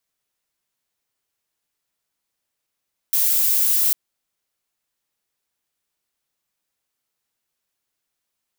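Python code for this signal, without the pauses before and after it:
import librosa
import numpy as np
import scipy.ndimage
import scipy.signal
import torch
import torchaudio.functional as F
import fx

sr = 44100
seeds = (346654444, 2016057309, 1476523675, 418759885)

y = fx.noise_colour(sr, seeds[0], length_s=0.8, colour='violet', level_db=-18.0)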